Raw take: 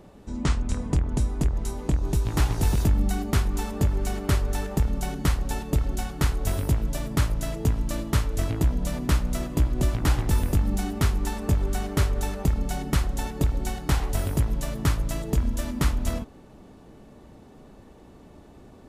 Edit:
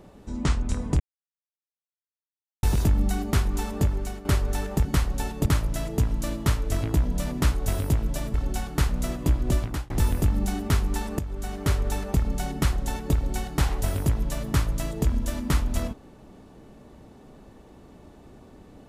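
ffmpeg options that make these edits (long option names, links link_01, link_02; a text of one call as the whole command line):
ffmpeg -i in.wav -filter_complex "[0:a]asplit=11[link_01][link_02][link_03][link_04][link_05][link_06][link_07][link_08][link_09][link_10][link_11];[link_01]atrim=end=1,asetpts=PTS-STARTPTS,afade=type=out:start_time=0.996:duration=0.004:curve=hsin[link_12];[link_02]atrim=start=1:end=2.63,asetpts=PTS-STARTPTS,volume=0[link_13];[link_03]atrim=start=2.63:end=4.25,asetpts=PTS-STARTPTS,afade=type=in:duration=0.004:curve=hsin,afade=type=out:start_time=1.2:duration=0.42:silence=0.298538[link_14];[link_04]atrim=start=4.25:end=4.852,asetpts=PTS-STARTPTS,afade=type=in:duration=0.004:curve=hsin:silence=0.298538[link_15];[link_05]atrim=start=5.158:end=5.772[link_16];[link_06]atrim=start=7.128:end=9.202[link_17];[link_07]atrim=start=6.318:end=7.132[link_18];[link_08]atrim=start=5.768:end=6.322[link_19];[link_09]atrim=start=9.198:end=10.21,asetpts=PTS-STARTPTS,afade=type=out:start_time=0.672:duration=0.34[link_20];[link_10]atrim=start=10.21:end=11.5,asetpts=PTS-STARTPTS,afade=type=in:duration=0.004:curve=hsin,afade=type=out:start_time=1.286:duration=0.004:curve=hsin:silence=0.237137[link_21];[link_11]atrim=start=11.5,asetpts=PTS-STARTPTS,afade=type=in:duration=0.6:silence=0.237137[link_22];[link_12][link_13][link_14][link_15]concat=n=4:v=0:a=1[link_23];[link_23][link_16]acrossfade=duration=0.004:curve1=hsin:curve2=hsin[link_24];[link_24][link_17]acrossfade=duration=0.004:curve1=hsin:curve2=hsin[link_25];[link_25][link_18]acrossfade=duration=0.004:curve1=hsin:curve2=hsin[link_26];[link_26][link_19]acrossfade=duration=0.004:curve1=hsin:curve2=hsin[link_27];[link_20][link_21][link_22]concat=n=3:v=0:a=1[link_28];[link_27][link_28]acrossfade=duration=0.004:curve1=hsin:curve2=hsin" out.wav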